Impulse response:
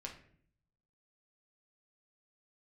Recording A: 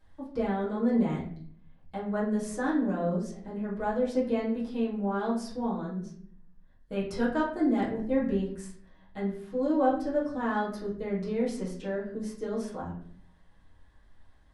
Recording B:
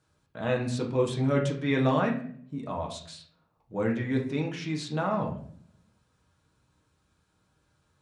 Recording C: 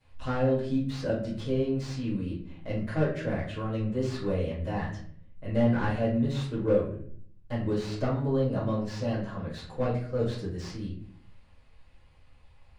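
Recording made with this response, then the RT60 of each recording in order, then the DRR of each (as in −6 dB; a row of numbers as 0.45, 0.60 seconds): B; 0.55, 0.60, 0.55 seconds; −9.0, 0.0, −15.5 decibels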